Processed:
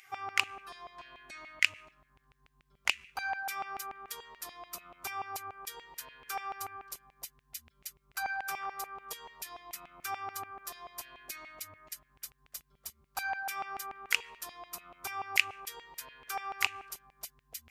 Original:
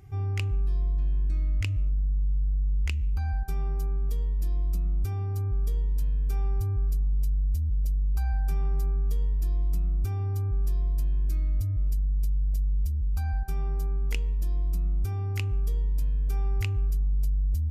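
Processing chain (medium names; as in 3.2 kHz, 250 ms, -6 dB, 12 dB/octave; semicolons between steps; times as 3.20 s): LFO high-pass saw down 6.9 Hz 800–2500 Hz; trim +8 dB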